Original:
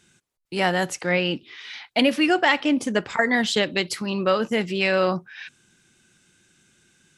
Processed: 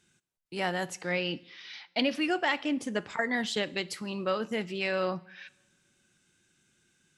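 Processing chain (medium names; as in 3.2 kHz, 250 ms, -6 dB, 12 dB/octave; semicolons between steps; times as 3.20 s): 1.03–2.15 s: resonant high shelf 6.6 kHz -7.5 dB, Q 3; two-slope reverb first 0.7 s, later 2.1 s, from -18 dB, DRR 18.5 dB; trim -9 dB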